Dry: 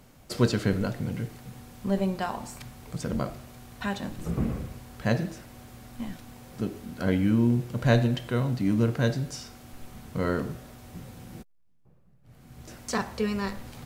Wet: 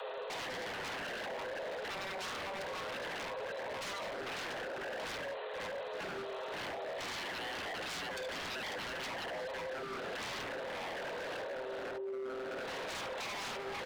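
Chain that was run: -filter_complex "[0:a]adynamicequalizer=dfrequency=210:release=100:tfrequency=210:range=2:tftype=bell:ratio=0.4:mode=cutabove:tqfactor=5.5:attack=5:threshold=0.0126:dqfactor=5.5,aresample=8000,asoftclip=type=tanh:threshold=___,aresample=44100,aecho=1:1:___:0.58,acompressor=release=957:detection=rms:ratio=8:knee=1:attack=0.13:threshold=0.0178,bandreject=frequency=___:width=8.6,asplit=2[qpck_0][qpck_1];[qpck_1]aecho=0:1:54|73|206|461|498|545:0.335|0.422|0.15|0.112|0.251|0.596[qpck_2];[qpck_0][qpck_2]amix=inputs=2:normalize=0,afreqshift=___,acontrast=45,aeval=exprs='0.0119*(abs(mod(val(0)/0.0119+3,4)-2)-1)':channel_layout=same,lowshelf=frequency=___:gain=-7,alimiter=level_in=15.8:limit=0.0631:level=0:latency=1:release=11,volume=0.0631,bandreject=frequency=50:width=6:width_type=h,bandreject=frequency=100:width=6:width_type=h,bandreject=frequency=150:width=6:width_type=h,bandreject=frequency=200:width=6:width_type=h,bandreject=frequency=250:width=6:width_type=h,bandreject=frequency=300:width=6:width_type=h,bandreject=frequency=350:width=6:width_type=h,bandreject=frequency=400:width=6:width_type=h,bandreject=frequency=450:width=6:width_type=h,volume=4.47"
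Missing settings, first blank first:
0.119, 7.3, 1800, 390, 99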